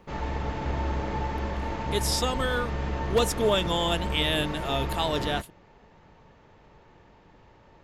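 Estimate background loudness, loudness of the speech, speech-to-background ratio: -32.0 LUFS, -28.0 LUFS, 4.0 dB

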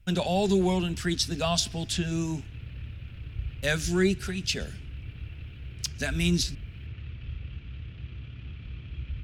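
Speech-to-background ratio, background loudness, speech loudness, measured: 12.5 dB, -40.5 LUFS, -28.0 LUFS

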